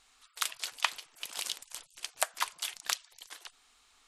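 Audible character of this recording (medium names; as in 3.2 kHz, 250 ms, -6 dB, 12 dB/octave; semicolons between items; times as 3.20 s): noise floor -66 dBFS; spectral tilt +1.5 dB/octave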